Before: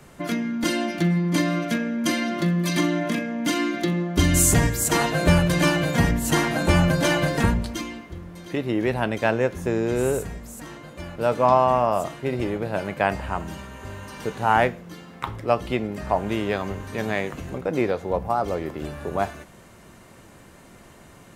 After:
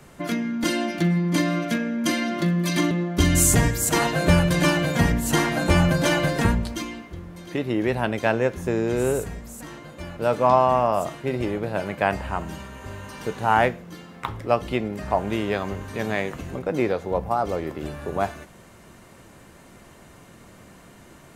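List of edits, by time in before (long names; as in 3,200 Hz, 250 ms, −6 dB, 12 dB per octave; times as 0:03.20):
0:02.91–0:03.90: remove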